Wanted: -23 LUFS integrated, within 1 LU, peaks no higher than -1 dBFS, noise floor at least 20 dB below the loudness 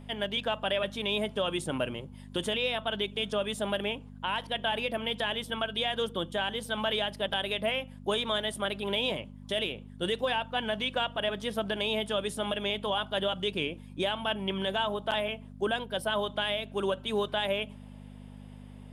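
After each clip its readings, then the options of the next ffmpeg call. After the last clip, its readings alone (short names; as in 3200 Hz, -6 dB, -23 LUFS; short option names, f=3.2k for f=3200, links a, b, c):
hum 50 Hz; harmonics up to 250 Hz; hum level -44 dBFS; loudness -31.0 LUFS; peak -17.5 dBFS; loudness target -23.0 LUFS
-> -af "bandreject=f=50:t=h:w=4,bandreject=f=100:t=h:w=4,bandreject=f=150:t=h:w=4,bandreject=f=200:t=h:w=4,bandreject=f=250:t=h:w=4"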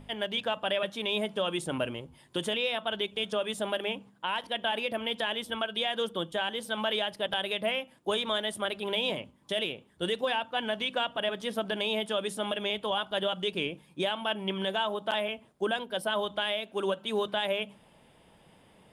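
hum none; loudness -31.0 LUFS; peak -17.5 dBFS; loudness target -23.0 LUFS
-> -af "volume=8dB"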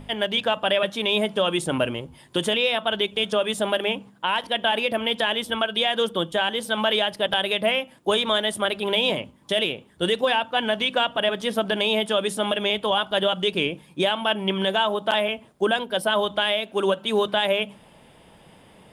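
loudness -23.0 LUFS; peak -9.5 dBFS; noise floor -53 dBFS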